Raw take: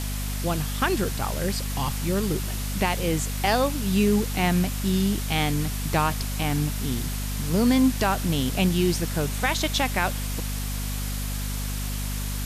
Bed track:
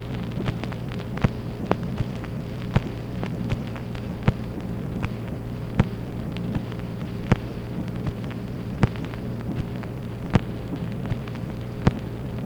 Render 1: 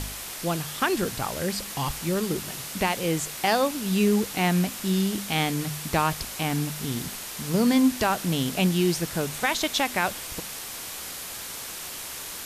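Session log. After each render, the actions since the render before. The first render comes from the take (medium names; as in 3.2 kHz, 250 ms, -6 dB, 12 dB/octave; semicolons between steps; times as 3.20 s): de-hum 50 Hz, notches 5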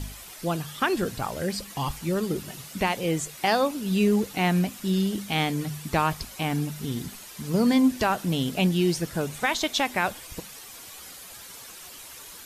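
noise reduction 10 dB, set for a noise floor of -37 dBFS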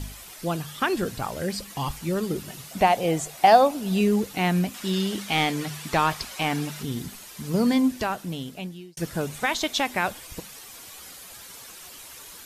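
2.71–4.01 s: peaking EQ 710 Hz +12.5 dB 0.59 oct; 4.74–6.83 s: overdrive pedal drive 12 dB, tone 5 kHz, clips at -11 dBFS; 7.64–8.97 s: fade out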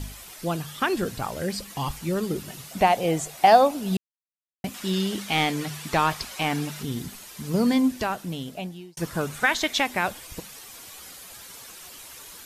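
3.97–4.64 s: mute; 8.46–9.82 s: peaking EQ 580 Hz -> 2.2 kHz +8.5 dB 0.53 oct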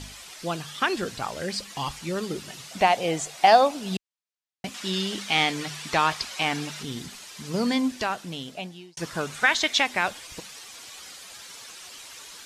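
low-pass 6.2 kHz 12 dB/octave; tilt EQ +2 dB/octave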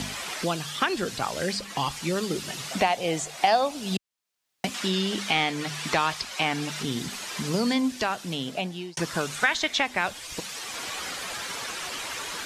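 three bands compressed up and down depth 70%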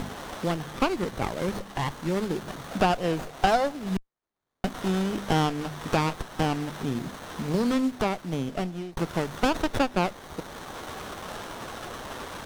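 sliding maximum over 17 samples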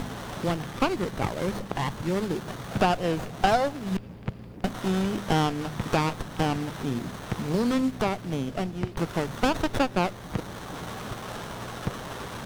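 add bed track -12 dB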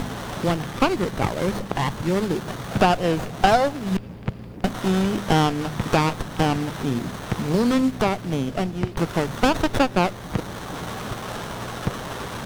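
trim +5 dB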